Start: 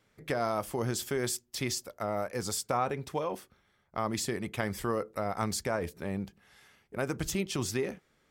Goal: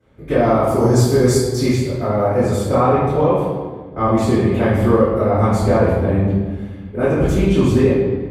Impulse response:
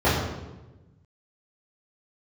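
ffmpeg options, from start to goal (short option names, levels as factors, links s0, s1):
-filter_complex "[0:a]asettb=1/sr,asplit=3[s0][s1][s2];[s0]atrim=end=0.674[s3];[s1]atrim=start=0.67:end=1.64,asetpts=PTS-STARTPTS,afade=t=in:d=0.004:c=qsin,afade=t=out:st=0.966:d=0.004:c=qsin,highshelf=f=4000:t=q:w=3:g=7.5[s4];[s2]atrim=start=1.636[s5];[s3][s4]acrossfade=d=0.004:c1=hsin:c2=qsin[s6];[s6][s5]acrossfade=d=0.004:c1=qsin:c2=hsin[s7];[1:a]atrim=start_sample=2205,asetrate=29106,aresample=44100[s8];[s7][s8]afir=irnorm=-1:irlink=0,volume=0.398"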